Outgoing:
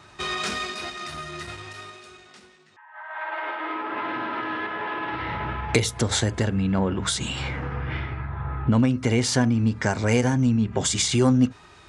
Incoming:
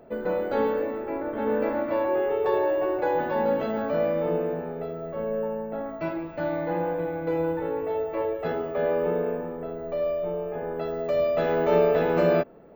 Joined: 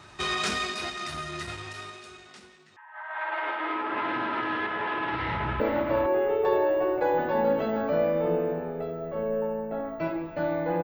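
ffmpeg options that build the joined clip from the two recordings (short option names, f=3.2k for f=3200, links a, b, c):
-filter_complex "[0:a]apad=whole_dur=10.83,atrim=end=10.83,atrim=end=5.602[a];[1:a]atrim=start=1.608:end=6.84[b];[a][b]acrossfade=d=0.004:c1=hsin:c2=hsin,asplit=2[c][d];[d]afade=t=in:st=5.13:d=0.01,afade=t=out:st=5.6:d=0.01,aecho=0:1:460|920:0.446684|0.0446684[e];[c][e]amix=inputs=2:normalize=0"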